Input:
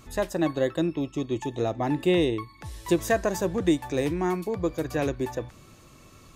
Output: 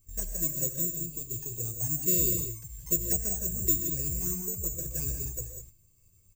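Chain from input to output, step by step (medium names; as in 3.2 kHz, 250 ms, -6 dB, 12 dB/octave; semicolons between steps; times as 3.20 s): touch-sensitive flanger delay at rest 11.9 ms, full sweep at -19 dBFS; careless resampling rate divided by 6×, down filtered, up zero stuff; amplifier tone stack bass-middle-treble 10-0-1; gated-style reverb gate 220 ms rising, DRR 4.5 dB; gate -57 dBFS, range -9 dB; comb 1.9 ms, depth 46%; trim +8 dB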